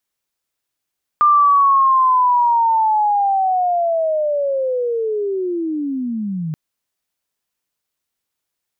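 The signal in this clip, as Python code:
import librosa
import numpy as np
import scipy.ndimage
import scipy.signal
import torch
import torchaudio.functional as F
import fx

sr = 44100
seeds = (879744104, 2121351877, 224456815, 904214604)

y = fx.chirp(sr, length_s=5.33, from_hz=1200.0, to_hz=150.0, law='linear', from_db=-8.5, to_db=-20.5)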